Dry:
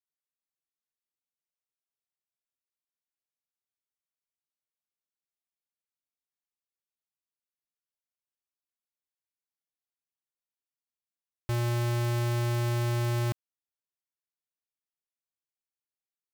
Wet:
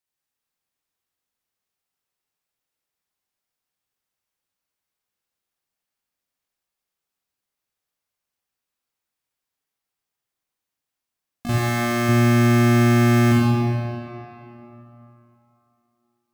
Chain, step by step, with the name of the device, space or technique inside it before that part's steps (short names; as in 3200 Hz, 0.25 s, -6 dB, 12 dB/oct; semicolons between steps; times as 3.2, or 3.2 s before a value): shimmer-style reverb (harmoniser +12 st -4 dB; reverb RT60 3.2 s, pre-delay 38 ms, DRR -5 dB); 11.58–12.09 low shelf 240 Hz -9.5 dB; gain +5 dB